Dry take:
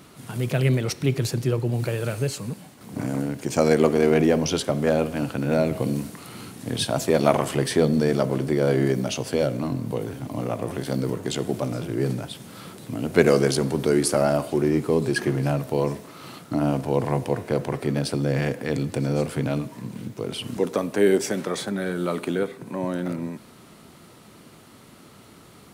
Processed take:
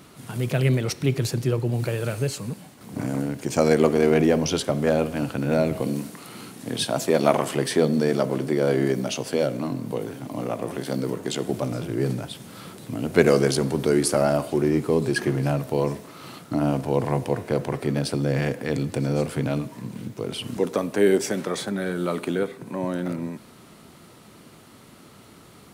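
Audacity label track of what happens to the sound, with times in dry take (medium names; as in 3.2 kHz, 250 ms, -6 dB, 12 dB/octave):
5.800000	11.500000	high-pass 150 Hz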